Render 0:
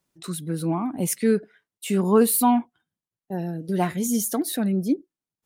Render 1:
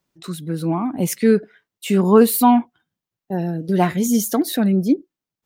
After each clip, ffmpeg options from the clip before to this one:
-af "equalizer=f=9900:w=1.3:g=-7.5,dynaudnorm=f=360:g=5:m=1.58,volume=1.33"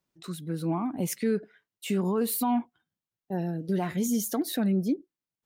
-af "alimiter=limit=0.266:level=0:latency=1:release=98,volume=0.422"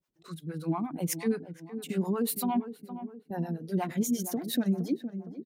-filter_complex "[0:a]asplit=2[s0][s1];[s1]adelay=464,lowpass=f=1100:p=1,volume=0.299,asplit=2[s2][s3];[s3]adelay=464,lowpass=f=1100:p=1,volume=0.54,asplit=2[s4][s5];[s5]adelay=464,lowpass=f=1100:p=1,volume=0.54,asplit=2[s6][s7];[s7]adelay=464,lowpass=f=1100:p=1,volume=0.54,asplit=2[s8][s9];[s9]adelay=464,lowpass=f=1100:p=1,volume=0.54,asplit=2[s10][s11];[s11]adelay=464,lowpass=f=1100:p=1,volume=0.54[s12];[s0][s2][s4][s6][s8][s10][s12]amix=inputs=7:normalize=0,acrossover=split=490[s13][s14];[s13]aeval=exprs='val(0)*(1-1/2+1/2*cos(2*PI*8.5*n/s))':c=same[s15];[s14]aeval=exprs='val(0)*(1-1/2-1/2*cos(2*PI*8.5*n/s))':c=same[s16];[s15][s16]amix=inputs=2:normalize=0,volume=1.26"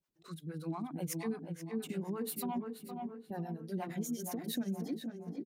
-filter_complex "[0:a]acompressor=threshold=0.02:ratio=2,asplit=2[s0][s1];[s1]adelay=482,lowpass=f=3400:p=1,volume=0.473,asplit=2[s2][s3];[s3]adelay=482,lowpass=f=3400:p=1,volume=0.4,asplit=2[s4][s5];[s5]adelay=482,lowpass=f=3400:p=1,volume=0.4,asplit=2[s6][s7];[s7]adelay=482,lowpass=f=3400:p=1,volume=0.4,asplit=2[s8][s9];[s9]adelay=482,lowpass=f=3400:p=1,volume=0.4[s10];[s0][s2][s4][s6][s8][s10]amix=inputs=6:normalize=0,volume=0.631"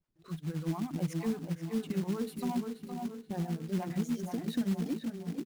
-af "aemphasis=mode=reproduction:type=bsi,acrusher=bits=4:mode=log:mix=0:aa=0.000001"

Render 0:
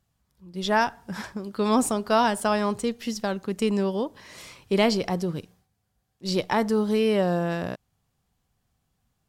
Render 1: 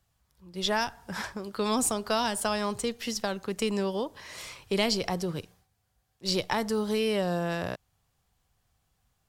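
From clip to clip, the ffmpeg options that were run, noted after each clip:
-filter_complex "[0:a]acrossover=split=290|3000[s0][s1][s2];[s1]acompressor=threshold=0.0316:ratio=3[s3];[s0][s3][s2]amix=inputs=3:normalize=0,equalizer=f=220:t=o:w=1.6:g=-8,volume=1.33"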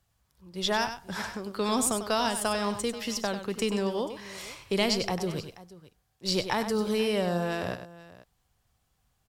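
-af "aecho=1:1:97|482:0.335|0.119"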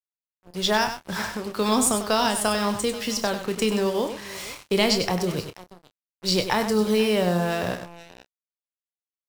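-filter_complex "[0:a]acrusher=bits=6:mix=0:aa=0.5,asplit=2[s0][s1];[s1]adelay=28,volume=0.299[s2];[s0][s2]amix=inputs=2:normalize=0,volume=1.78"

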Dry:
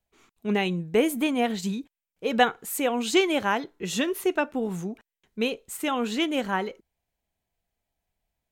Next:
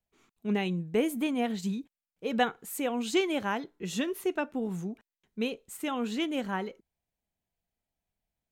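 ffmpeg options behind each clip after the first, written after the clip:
-af "equalizer=f=190:t=o:w=1.6:g=4.5,volume=0.447"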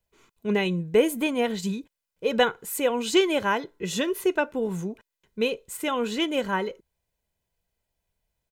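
-af "aecho=1:1:2:0.45,volume=2"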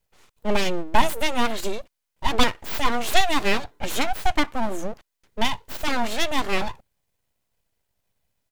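-af "aeval=exprs='abs(val(0))':c=same,volume=1.88"

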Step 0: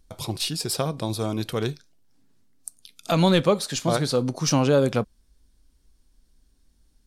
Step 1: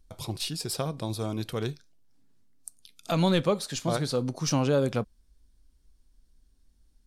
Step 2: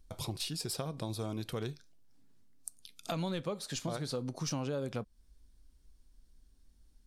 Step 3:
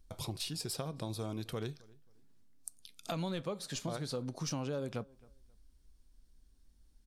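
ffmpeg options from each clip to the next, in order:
-af "lowshelf=f=87:g=5.5,volume=0.531"
-af "acompressor=threshold=0.0178:ratio=4"
-filter_complex "[0:a]asplit=2[s0][s1];[s1]adelay=267,lowpass=f=2100:p=1,volume=0.0668,asplit=2[s2][s3];[s3]adelay=267,lowpass=f=2100:p=1,volume=0.27[s4];[s0][s2][s4]amix=inputs=3:normalize=0,volume=0.841"

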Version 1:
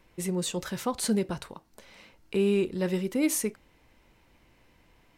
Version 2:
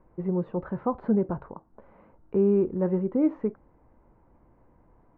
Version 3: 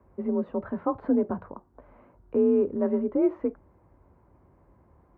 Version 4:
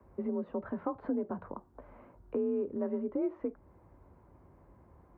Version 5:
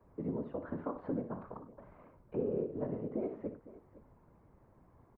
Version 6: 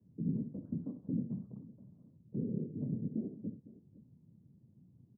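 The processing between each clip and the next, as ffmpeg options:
-af "lowpass=f=1200:w=0.5412,lowpass=f=1200:w=1.3066,volume=1.41"
-af "afreqshift=41"
-filter_complex "[0:a]acrossover=split=140|510[s0][s1][s2];[s0]alimiter=level_in=15.8:limit=0.0631:level=0:latency=1,volume=0.0631[s3];[s3][s1][s2]amix=inputs=3:normalize=0,acompressor=threshold=0.02:ratio=2.5"
-af "afftfilt=real='hypot(re,im)*cos(2*PI*random(0))':imag='hypot(re,im)*sin(2*PI*random(1))':win_size=512:overlap=0.75,aecho=1:1:60|72|99|215|508:0.282|0.133|0.119|0.106|0.126,volume=1.26"
-af "asuperpass=centerf=160:order=4:qfactor=1.3,volume=2.11"

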